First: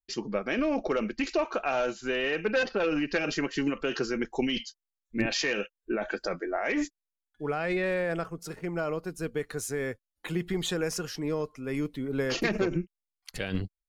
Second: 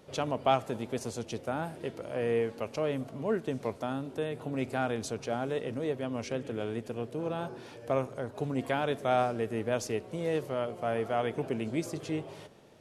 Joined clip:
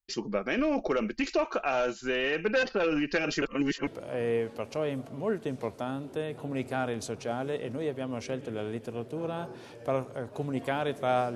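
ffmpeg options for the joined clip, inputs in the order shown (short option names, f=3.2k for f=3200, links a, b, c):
-filter_complex "[0:a]apad=whole_dur=11.35,atrim=end=11.35,asplit=2[a][b];[a]atrim=end=3.422[c];[b]atrim=start=3.418:end=3.872,asetpts=PTS-STARTPTS,areverse[d];[1:a]atrim=start=1.888:end=9.37[e];[c][d]acrossfade=d=0.004:c1=hsin:c2=hsin[f];[f][e]acrossfade=d=0.004:c1=hsin:c2=hsin"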